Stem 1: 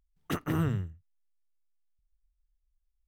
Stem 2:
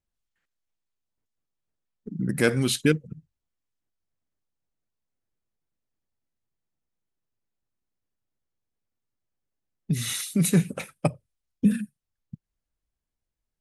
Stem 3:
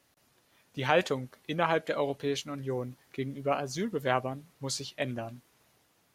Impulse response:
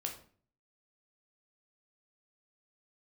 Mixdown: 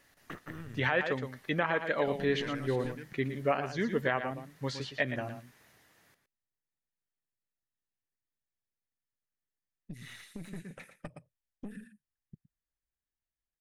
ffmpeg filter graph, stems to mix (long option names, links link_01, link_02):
-filter_complex "[0:a]volume=-1.5dB[link_01];[1:a]volume=-6dB,asplit=2[link_02][link_03];[link_03]volume=-22dB[link_04];[2:a]volume=1.5dB,asplit=2[link_05][link_06];[link_06]volume=-10dB[link_07];[link_01][link_02]amix=inputs=2:normalize=0,aeval=exprs='(tanh(17.8*val(0)+0.8)-tanh(0.8))/17.8':channel_layout=same,acompressor=threshold=-44dB:ratio=3,volume=0dB[link_08];[link_04][link_07]amix=inputs=2:normalize=0,aecho=0:1:115:1[link_09];[link_05][link_08][link_09]amix=inputs=3:normalize=0,acrossover=split=4000[link_10][link_11];[link_11]acompressor=threshold=-59dB:ratio=4:attack=1:release=60[link_12];[link_10][link_12]amix=inputs=2:normalize=0,equalizer=frequency=1800:width_type=o:width=0.44:gain=10,alimiter=limit=-15.5dB:level=0:latency=1:release=480"